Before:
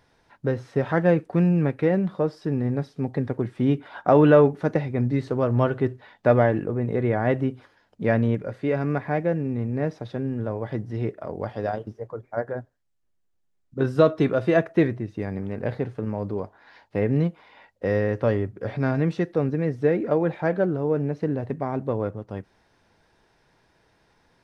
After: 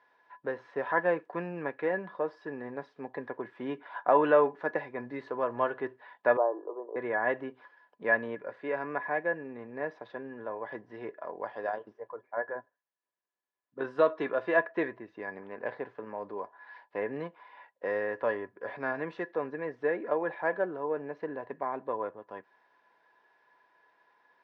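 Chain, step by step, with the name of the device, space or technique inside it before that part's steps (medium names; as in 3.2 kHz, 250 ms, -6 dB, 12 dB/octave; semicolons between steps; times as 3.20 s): 6.37–6.96 s: elliptic band-pass 340–1100 Hz, stop band 40 dB; tin-can telephone (band-pass 490–2700 Hz; small resonant body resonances 1/1.7 kHz, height 16 dB, ringing for 95 ms); trim -4.5 dB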